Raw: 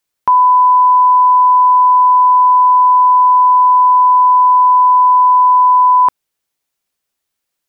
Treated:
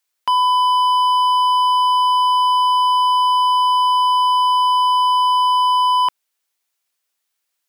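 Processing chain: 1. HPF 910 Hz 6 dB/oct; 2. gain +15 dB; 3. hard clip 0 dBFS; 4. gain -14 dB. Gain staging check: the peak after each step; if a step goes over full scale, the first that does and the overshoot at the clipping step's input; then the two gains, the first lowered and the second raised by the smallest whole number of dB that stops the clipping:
-7.5, +7.5, 0.0, -14.0 dBFS; step 2, 7.5 dB; step 2 +7 dB, step 4 -6 dB

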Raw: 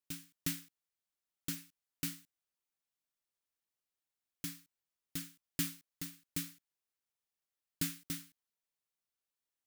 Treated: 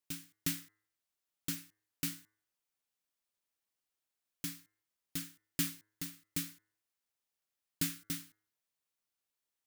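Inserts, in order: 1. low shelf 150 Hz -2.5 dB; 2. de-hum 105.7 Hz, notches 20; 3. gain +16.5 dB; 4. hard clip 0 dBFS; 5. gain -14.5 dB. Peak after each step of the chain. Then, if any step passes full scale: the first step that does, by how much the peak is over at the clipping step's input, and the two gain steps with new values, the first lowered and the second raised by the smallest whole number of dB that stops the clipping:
-20.0, -20.0, -3.5, -3.5, -18.0 dBFS; no overload

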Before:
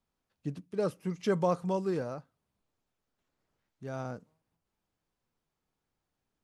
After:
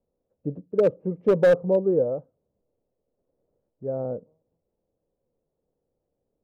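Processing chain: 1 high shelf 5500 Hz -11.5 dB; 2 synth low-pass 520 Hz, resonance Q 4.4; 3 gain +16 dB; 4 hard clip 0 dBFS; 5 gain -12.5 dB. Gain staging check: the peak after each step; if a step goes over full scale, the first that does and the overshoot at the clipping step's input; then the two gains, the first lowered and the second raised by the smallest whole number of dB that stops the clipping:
-16.5, -10.0, +6.0, 0.0, -12.5 dBFS; step 3, 6.0 dB; step 3 +10 dB, step 5 -6.5 dB

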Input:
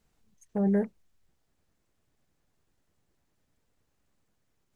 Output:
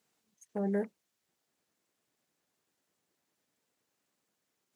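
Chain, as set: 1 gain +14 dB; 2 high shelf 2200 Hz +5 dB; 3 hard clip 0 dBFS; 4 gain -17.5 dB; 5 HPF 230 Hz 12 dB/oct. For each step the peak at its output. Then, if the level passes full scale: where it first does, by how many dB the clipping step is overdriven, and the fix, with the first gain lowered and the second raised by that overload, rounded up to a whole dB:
-3.0, -3.0, -3.0, -20.5, -21.5 dBFS; no overload

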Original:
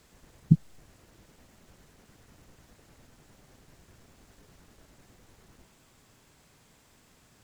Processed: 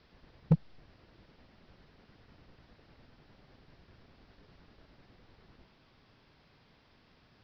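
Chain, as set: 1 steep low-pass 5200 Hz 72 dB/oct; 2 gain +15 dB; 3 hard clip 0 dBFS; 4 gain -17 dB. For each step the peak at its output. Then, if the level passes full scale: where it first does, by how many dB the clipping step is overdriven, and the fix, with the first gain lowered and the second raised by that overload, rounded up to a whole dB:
-6.0, +9.0, 0.0, -17.0 dBFS; step 2, 9.0 dB; step 2 +6 dB, step 4 -8 dB

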